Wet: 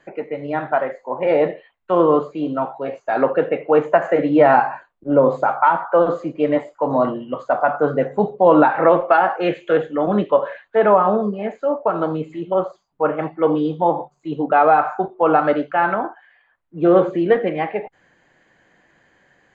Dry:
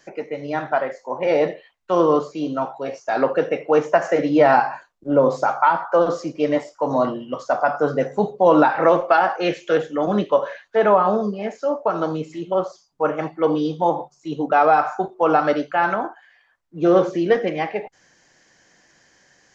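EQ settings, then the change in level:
moving average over 8 samples
+2.0 dB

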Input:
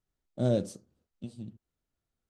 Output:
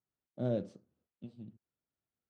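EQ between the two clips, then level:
band-pass filter 100–2,800 Hz
−6.0 dB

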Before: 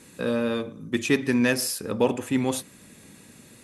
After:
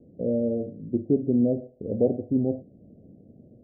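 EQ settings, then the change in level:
Butterworth low-pass 710 Hz 96 dB per octave
parametric band 84 Hz +3 dB 1.5 octaves
0.0 dB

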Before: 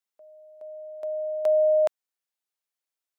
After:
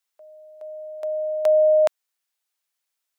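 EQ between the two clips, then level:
high-pass filter 840 Hz 6 dB per octave
+8.5 dB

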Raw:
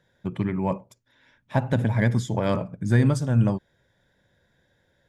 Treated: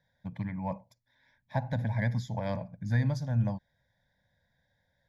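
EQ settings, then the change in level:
phaser with its sweep stopped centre 1,900 Hz, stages 8
−6.0 dB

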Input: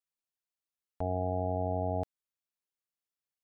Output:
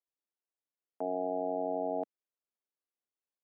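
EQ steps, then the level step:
high-pass filter 250 Hz 24 dB per octave
resonant band-pass 340 Hz, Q 0.53
+2.0 dB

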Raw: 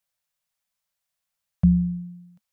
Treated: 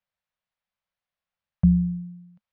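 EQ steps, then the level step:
high-frequency loss of the air 270 metres
0.0 dB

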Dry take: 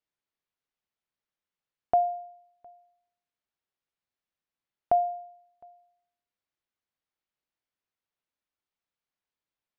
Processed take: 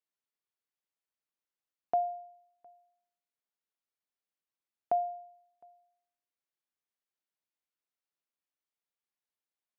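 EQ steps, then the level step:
high-pass filter 180 Hz
−6.0 dB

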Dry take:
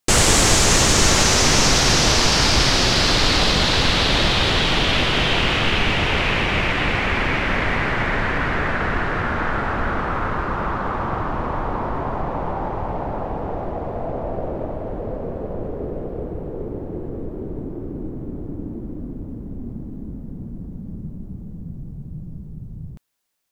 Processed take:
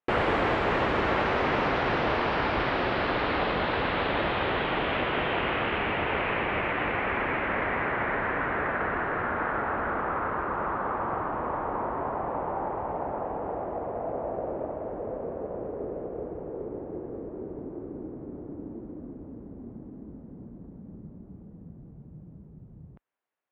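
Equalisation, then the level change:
high-pass filter 44 Hz
high-frequency loss of the air 480 metres
bass and treble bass −12 dB, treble −15 dB
−2.0 dB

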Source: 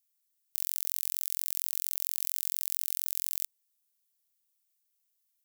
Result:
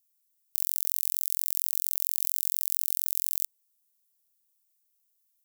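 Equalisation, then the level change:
parametric band 160 Hz +6 dB 1.4 octaves
high-shelf EQ 4,300 Hz +9.5 dB
−5.0 dB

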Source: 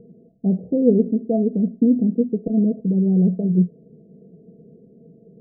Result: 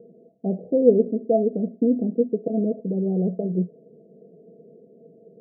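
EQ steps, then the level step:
resonant band-pass 640 Hz, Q 1.3
+5.0 dB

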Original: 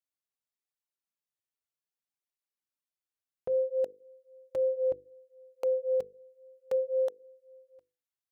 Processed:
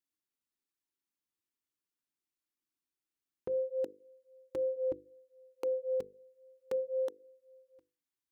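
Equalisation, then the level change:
drawn EQ curve 170 Hz 0 dB, 310 Hz +10 dB, 620 Hz −10 dB, 920 Hz −1 dB
0.0 dB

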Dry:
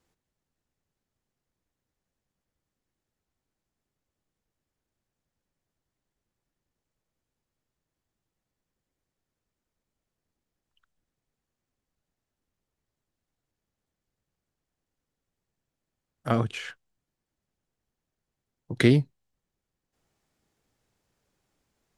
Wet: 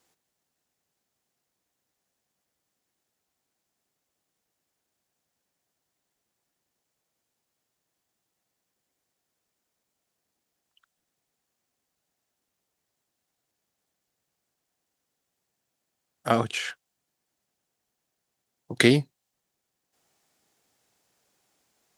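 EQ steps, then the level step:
high-pass filter 290 Hz 6 dB per octave
parametric band 730 Hz +4 dB 0.33 octaves
high-shelf EQ 3,500 Hz +7 dB
+3.5 dB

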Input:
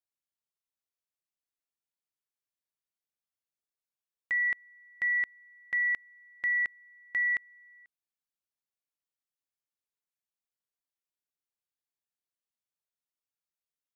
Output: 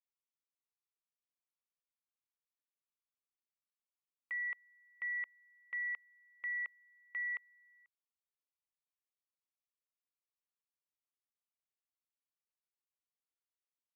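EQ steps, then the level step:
band-pass filter 740–2,200 Hz
phaser with its sweep stopped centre 1,100 Hz, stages 8
−3.5 dB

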